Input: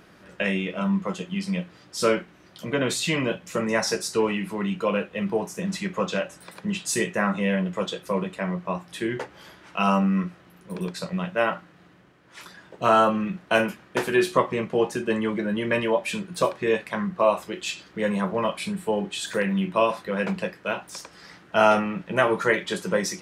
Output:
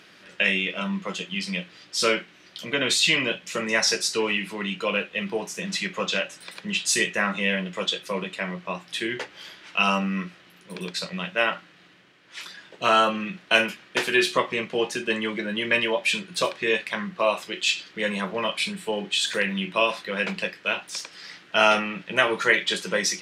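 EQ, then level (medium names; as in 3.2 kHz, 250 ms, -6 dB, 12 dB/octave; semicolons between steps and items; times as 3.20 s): frequency weighting D; -2.5 dB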